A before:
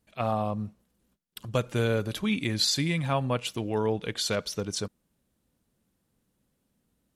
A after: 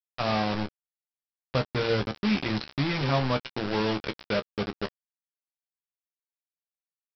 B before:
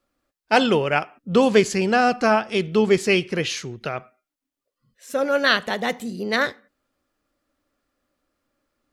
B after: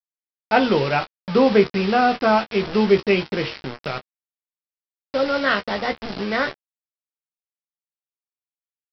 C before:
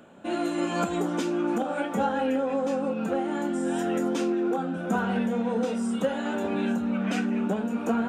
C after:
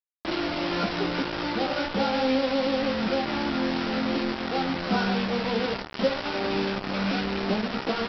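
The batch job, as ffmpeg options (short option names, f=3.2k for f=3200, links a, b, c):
-filter_complex "[0:a]bandreject=f=1.7k:w=12,acrossover=split=2800[a][b];[b]acompressor=threshold=-46dB:ratio=4:attack=1:release=60[c];[a][c]amix=inputs=2:normalize=0,bandreject=f=116.3:t=h:w=4,bandreject=f=232.6:t=h:w=4,bandreject=f=348.9:t=h:w=4,bandreject=f=465.2:t=h:w=4,bandreject=f=581.5:t=h:w=4,bandreject=f=697.8:t=h:w=4,bandreject=f=814.1:t=h:w=4,bandreject=f=930.4:t=h:w=4,bandreject=f=1.0467k:t=h:w=4,bandreject=f=1.163k:t=h:w=4,aresample=11025,acrusher=bits=4:mix=0:aa=0.000001,aresample=44100,aecho=1:1:15|28:0.422|0.188"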